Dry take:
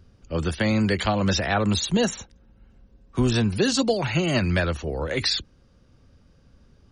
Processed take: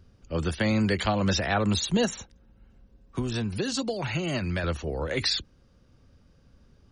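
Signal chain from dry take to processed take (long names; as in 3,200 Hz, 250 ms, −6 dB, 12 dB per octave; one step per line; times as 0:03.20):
0:02.05–0:04.64: downward compressor 6 to 1, threshold −23 dBFS, peak gain reduction 7.5 dB
level −2.5 dB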